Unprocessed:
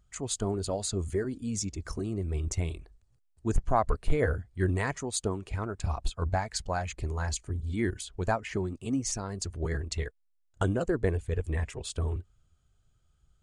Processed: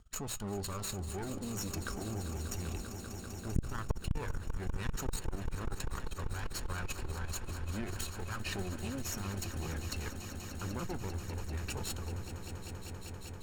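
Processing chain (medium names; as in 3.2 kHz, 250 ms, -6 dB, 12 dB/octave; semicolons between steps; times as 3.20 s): comb filter that takes the minimum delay 0.72 ms; hum notches 60/120 Hz; in parallel at +1 dB: peak limiter -26 dBFS, peak gain reduction 11.5 dB; on the sum: level held to a coarse grid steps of 20 dB; flange 0.25 Hz, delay 4.4 ms, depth 2 ms, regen +77%; on a send: echo with a slow build-up 196 ms, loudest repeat 5, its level -13 dB; on the sum: transformer saturation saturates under 190 Hz; trim +6 dB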